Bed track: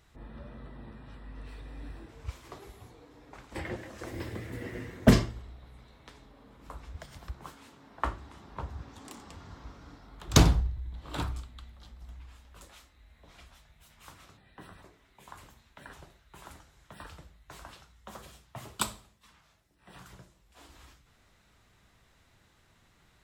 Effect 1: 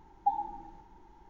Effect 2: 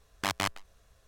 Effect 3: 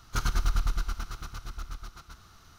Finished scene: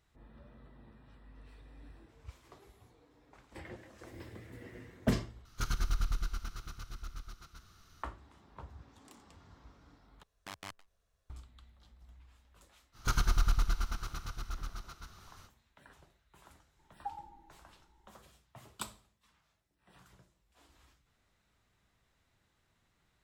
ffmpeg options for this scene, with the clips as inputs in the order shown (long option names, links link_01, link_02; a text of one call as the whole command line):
ffmpeg -i bed.wav -i cue0.wav -i cue1.wav -i cue2.wav -filter_complex "[3:a]asplit=2[link_01][link_02];[0:a]volume=-10.5dB[link_03];[link_01]equalizer=frequency=840:width=1.5:gain=-5[link_04];[link_03]asplit=3[link_05][link_06][link_07];[link_05]atrim=end=5.454[link_08];[link_04]atrim=end=2.58,asetpts=PTS-STARTPTS,volume=-5.5dB[link_09];[link_06]atrim=start=8.026:end=10.234[link_10];[2:a]atrim=end=1.07,asetpts=PTS-STARTPTS,volume=-16dB[link_11];[link_07]atrim=start=11.296[link_12];[link_02]atrim=end=2.58,asetpts=PTS-STARTPTS,volume=-1.5dB,afade=type=in:duration=0.05,afade=type=out:start_time=2.53:duration=0.05,adelay=12920[link_13];[1:a]atrim=end=1.29,asetpts=PTS-STARTPTS,volume=-13dB,afade=type=in:duration=0.004:curve=hsin,afade=type=out:start_time=1.286:duration=0.004:curve=hsin,adelay=16790[link_14];[link_08][link_09]acrossfade=duration=0.004:curve1=hsin:curve2=hsin[link_15];[link_15][link_10]acrossfade=duration=0.004:curve1=hsin:curve2=hsin[link_16];[link_16][link_11]acrossfade=duration=0.004:curve1=hsin:curve2=hsin[link_17];[link_17][link_12]acrossfade=duration=0.004:curve1=hsin:curve2=hsin[link_18];[link_18][link_13][link_14]amix=inputs=3:normalize=0" out.wav